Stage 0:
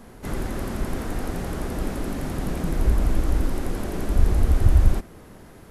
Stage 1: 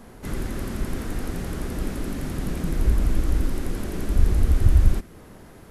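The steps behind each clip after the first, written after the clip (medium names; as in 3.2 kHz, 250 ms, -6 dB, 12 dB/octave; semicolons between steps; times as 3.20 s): dynamic bell 750 Hz, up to -6 dB, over -47 dBFS, Q 1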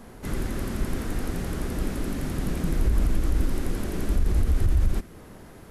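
peak limiter -13.5 dBFS, peak gain reduction 9.5 dB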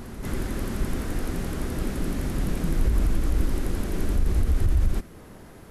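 reverse echo 618 ms -10 dB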